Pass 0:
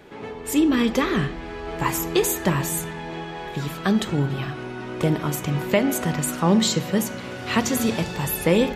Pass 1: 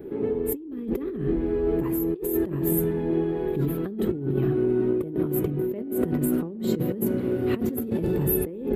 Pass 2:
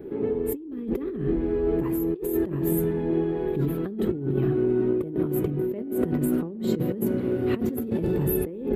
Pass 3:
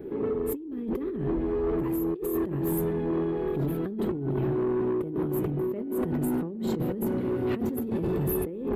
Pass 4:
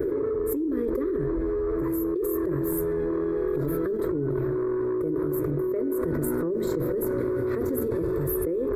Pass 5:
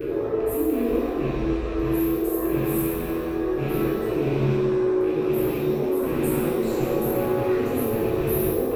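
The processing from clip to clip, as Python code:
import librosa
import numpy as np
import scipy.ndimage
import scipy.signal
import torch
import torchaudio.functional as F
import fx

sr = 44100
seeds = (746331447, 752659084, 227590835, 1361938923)

y1 = fx.curve_eq(x, sr, hz=(170.0, 380.0, 610.0, 940.0, 1500.0, 4000.0, 6300.0, 13000.0), db=(0, 9, -7, -14, -14, -21, -29, 0))
y1 = fx.over_compress(y1, sr, threshold_db=-27.0, ratio=-1.0)
y2 = fx.high_shelf(y1, sr, hz=8000.0, db=-6.0)
y3 = 10.0 ** (-22.0 / 20.0) * np.tanh(y2 / 10.0 ** (-22.0 / 20.0))
y4 = fx.fixed_phaser(y3, sr, hz=780.0, stages=6)
y4 = fx.env_flatten(y4, sr, amount_pct=100)
y5 = fx.rattle_buzz(y4, sr, strikes_db=-30.0, level_db=-32.0)
y5 = fx.rev_shimmer(y5, sr, seeds[0], rt60_s=1.2, semitones=7, shimmer_db=-8, drr_db=-7.0)
y5 = F.gain(torch.from_numpy(y5), -4.5).numpy()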